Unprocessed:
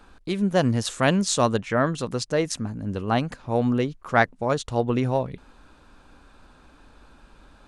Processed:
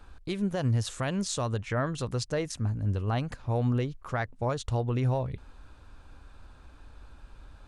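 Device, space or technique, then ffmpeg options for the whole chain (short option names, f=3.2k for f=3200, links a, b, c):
car stereo with a boomy subwoofer: -af "lowshelf=f=140:t=q:w=1.5:g=8,alimiter=limit=-15.5dB:level=0:latency=1:release=131,volume=-4dB"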